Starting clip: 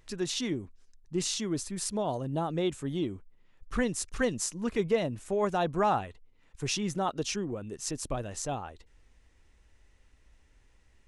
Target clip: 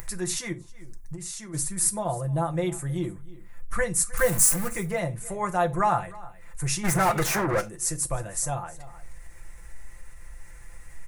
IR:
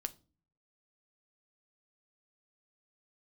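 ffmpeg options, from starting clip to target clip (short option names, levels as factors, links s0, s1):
-filter_complex "[0:a]asettb=1/sr,asplit=3[s0][s1][s2];[s0]atrim=end=4.174[s3];[s1]atrim=start=4.17:end=4.68,asetpts=PTS-STARTPTS,afade=t=in:d=0.004:c=qsin,afade=t=out:st=0.506:d=0.004:c=qsin,aeval=exprs='val(0)+0.5*0.0299*sgn(val(0))':c=same[s4];[s2]atrim=start=4.676[s5];[s3][s4]acrossfade=d=0.004:c1=hsin:c2=qsin[s6];[s6][s5]acrossfade=d=0.004:c1=qsin:c2=hsin,aecho=1:1:5.8:0.63,aecho=1:1:312:0.0841,asplit=3[s7][s8][s9];[s7]afade=t=out:st=0.52:d=0.02[s10];[s8]acompressor=threshold=0.0126:ratio=6,afade=t=in:st=0.52:d=0.02,afade=t=out:st=1.53:d=0.02[s11];[s9]afade=t=in:st=1.53:d=0.02[s12];[s10][s11][s12]amix=inputs=3:normalize=0,asplit=3[s13][s14][s15];[s13]afade=t=out:st=6.83:d=0.02[s16];[s14]asplit=2[s17][s18];[s18]highpass=f=720:p=1,volume=44.7,asoftclip=type=tanh:threshold=0.158[s19];[s17][s19]amix=inputs=2:normalize=0,lowpass=f=2000:p=1,volume=0.501,afade=t=in:st=6.83:d=0.02,afade=t=out:st=7.6:d=0.02[s20];[s15]afade=t=in:st=7.6:d=0.02[s21];[s16][s20][s21]amix=inputs=3:normalize=0,bandreject=f=450:w=12,acompressor=mode=upward:threshold=0.0178:ratio=2.5,firequalizer=gain_entry='entry(140,0);entry(250,-14);entry(460,-3);entry(2000,2);entry(3000,-12);entry(9800,11)':delay=0.05:min_phase=1[s22];[1:a]atrim=start_sample=2205,atrim=end_sample=4410[s23];[s22][s23]afir=irnorm=-1:irlink=0,volume=1.88"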